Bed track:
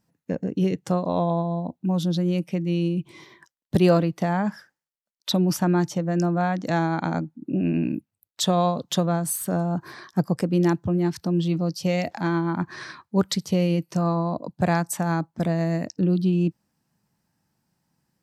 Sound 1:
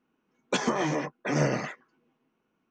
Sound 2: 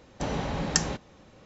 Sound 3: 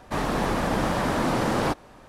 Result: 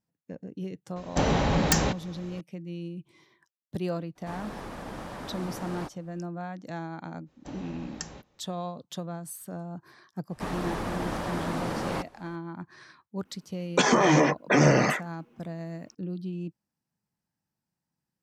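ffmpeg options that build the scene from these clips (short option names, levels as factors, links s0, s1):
-filter_complex "[2:a]asplit=2[s0][s1];[3:a]asplit=2[s2][s3];[0:a]volume=0.211[s4];[s0]aeval=exprs='0.668*sin(PI/2*5.01*val(0)/0.668)':c=same[s5];[1:a]alimiter=level_in=9.44:limit=0.891:release=50:level=0:latency=1[s6];[s5]atrim=end=1.45,asetpts=PTS-STARTPTS,volume=0.282,afade=t=in:d=0.004:c=hsin,afade=t=out:st=1.446:d=0.004:c=hsin,adelay=960[s7];[s2]atrim=end=2.08,asetpts=PTS-STARTPTS,volume=0.188,afade=t=in:d=0.02,afade=t=out:st=2.06:d=0.02,adelay=4150[s8];[s1]atrim=end=1.45,asetpts=PTS-STARTPTS,volume=0.211,afade=t=in:d=0.05,afade=t=out:st=1.4:d=0.05,adelay=7250[s9];[s3]atrim=end=2.08,asetpts=PTS-STARTPTS,volume=0.422,afade=t=in:d=0.02,afade=t=out:st=2.06:d=0.02,adelay=10290[s10];[s6]atrim=end=2.7,asetpts=PTS-STARTPTS,volume=0.316,afade=t=in:d=0.004:c=hsin,afade=t=out:st=2.696:d=0.004:c=hsin,adelay=13250[s11];[s4][s7][s8][s9][s10][s11]amix=inputs=6:normalize=0"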